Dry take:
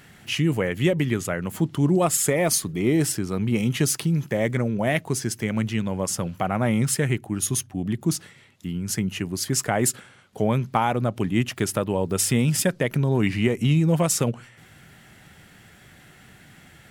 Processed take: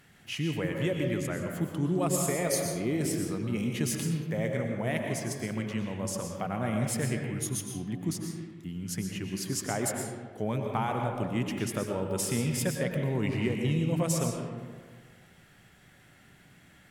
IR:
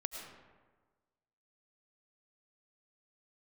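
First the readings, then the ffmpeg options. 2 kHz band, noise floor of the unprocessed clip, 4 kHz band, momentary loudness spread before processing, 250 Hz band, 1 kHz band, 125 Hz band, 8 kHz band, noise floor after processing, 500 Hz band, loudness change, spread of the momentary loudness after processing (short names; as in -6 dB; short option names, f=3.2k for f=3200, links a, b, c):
-7.5 dB, -51 dBFS, -8.0 dB, 7 LU, -7.0 dB, -7.5 dB, -7.5 dB, -8.5 dB, -58 dBFS, -6.5 dB, -7.5 dB, 8 LU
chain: -filter_complex "[1:a]atrim=start_sample=2205,asetrate=38808,aresample=44100[a];[0:a][a]afir=irnorm=-1:irlink=0,volume=-8dB"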